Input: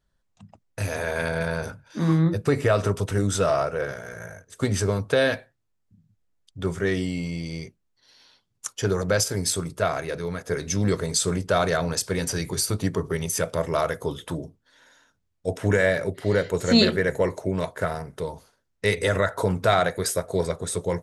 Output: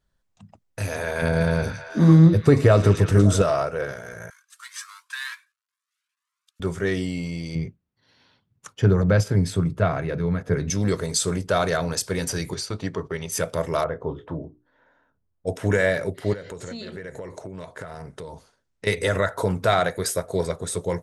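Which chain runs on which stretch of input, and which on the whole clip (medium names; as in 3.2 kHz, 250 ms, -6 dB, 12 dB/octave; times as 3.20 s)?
1.22–3.42 s: bass shelf 480 Hz +9 dB + repeats whose band climbs or falls 112 ms, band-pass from 5.5 kHz, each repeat -0.7 oct, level -2 dB
4.30–6.60 s: CVSD coder 64 kbps + steep high-pass 1 kHz 96 dB/octave + Shepard-style flanger rising 1 Hz
7.55–10.70 s: high-pass 85 Hz + tone controls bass +12 dB, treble -14 dB
12.54–13.32 s: low-pass 4.8 kHz + gate -38 dBFS, range -10 dB + bass shelf 380 Hz -5.5 dB
13.84–15.47 s: low-pass 1.2 kHz + hum notches 60/120/180/240/300/360/420 Hz + doubling 26 ms -12.5 dB
16.33–18.87 s: low-pass 10 kHz 24 dB/octave + compression 16:1, threshold -31 dBFS
whole clip: none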